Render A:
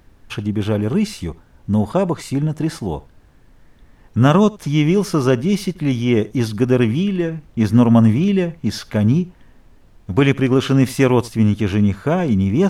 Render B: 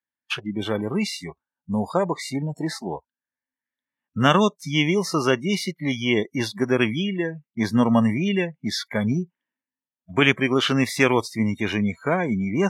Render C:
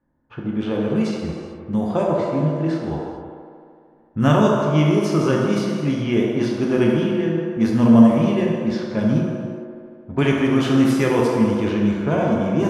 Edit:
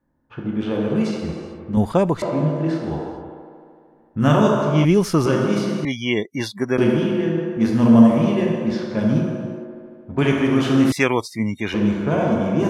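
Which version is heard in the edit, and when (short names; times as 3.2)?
C
1.77–2.22 from A
4.85–5.26 from A
5.85–6.78 from B
10.92–11.74 from B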